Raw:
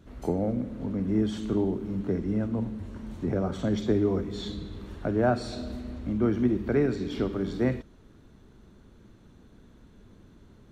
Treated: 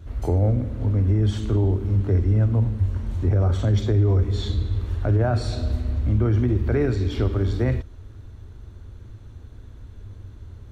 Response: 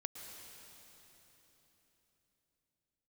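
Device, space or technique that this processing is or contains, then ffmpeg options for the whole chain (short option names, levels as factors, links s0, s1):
car stereo with a boomy subwoofer: -af "lowshelf=f=130:t=q:w=3:g=9,alimiter=limit=0.141:level=0:latency=1:release=17,volume=1.68"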